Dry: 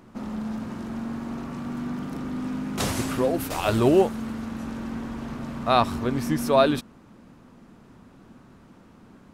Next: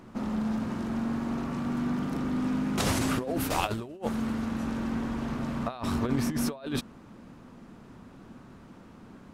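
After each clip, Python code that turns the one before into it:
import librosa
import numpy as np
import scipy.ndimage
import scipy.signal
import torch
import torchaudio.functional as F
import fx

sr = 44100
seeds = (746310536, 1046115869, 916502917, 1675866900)

y = fx.high_shelf(x, sr, hz=9200.0, db=-3.5)
y = fx.over_compress(y, sr, threshold_db=-26.0, ratio=-0.5)
y = y * 10.0 ** (-1.5 / 20.0)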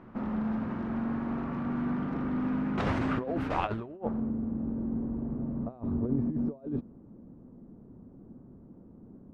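y = fx.filter_sweep_lowpass(x, sr, from_hz=1900.0, to_hz=430.0, start_s=3.8, end_s=4.32, q=0.89)
y = y * 10.0 ** (-1.5 / 20.0)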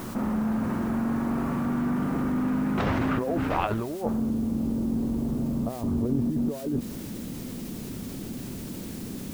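y = fx.quant_dither(x, sr, seeds[0], bits=10, dither='triangular')
y = fx.env_flatten(y, sr, amount_pct=50)
y = y * 10.0 ** (2.0 / 20.0)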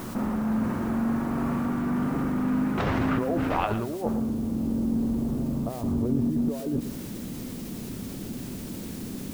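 y = x + 10.0 ** (-12.0 / 20.0) * np.pad(x, (int(114 * sr / 1000.0), 0))[:len(x)]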